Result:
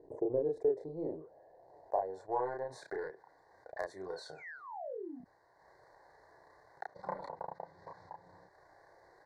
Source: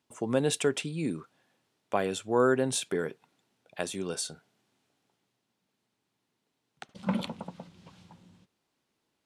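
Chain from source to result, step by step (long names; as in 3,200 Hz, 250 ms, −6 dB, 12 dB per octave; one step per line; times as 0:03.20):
one-sided soft clipper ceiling −20.5 dBFS
background noise pink −73 dBFS
band-pass filter sweep 370 Hz → 1,300 Hz, 0:00.41–0:02.90
sound drawn into the spectrogram fall, 0:04.16–0:05.21, 220–4,500 Hz −51 dBFS
bass and treble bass +4 dB, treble −14 dB
transient designer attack +9 dB, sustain −9 dB
Chebyshev band-stop filter 1,900–4,200 Hz, order 3
phaser with its sweep stopped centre 540 Hz, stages 4
double-tracking delay 32 ms −3 dB
envelope flattener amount 50%
level −8.5 dB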